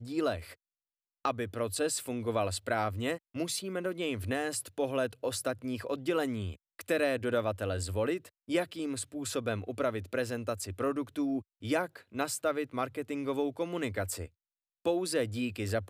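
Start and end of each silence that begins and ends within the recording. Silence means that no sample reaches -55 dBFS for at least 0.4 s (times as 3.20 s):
0.54–1.25 s
14.29–14.85 s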